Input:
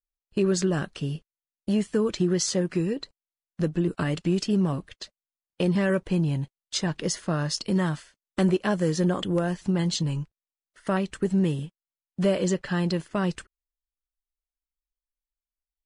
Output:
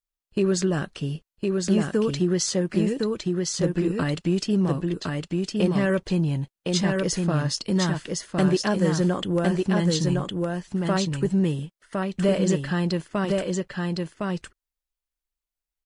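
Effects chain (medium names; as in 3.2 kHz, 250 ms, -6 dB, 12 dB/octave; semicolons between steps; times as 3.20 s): delay 1060 ms -3 dB; trim +1 dB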